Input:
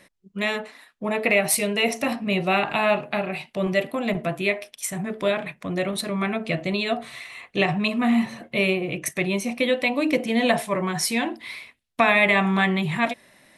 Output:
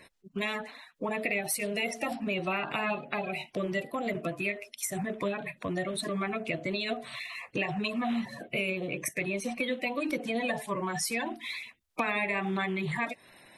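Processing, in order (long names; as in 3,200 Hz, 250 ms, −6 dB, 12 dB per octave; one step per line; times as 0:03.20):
spectral magnitudes quantised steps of 30 dB
downward compressor 3 to 1, threshold −31 dBFS, peak gain reduction 12.5 dB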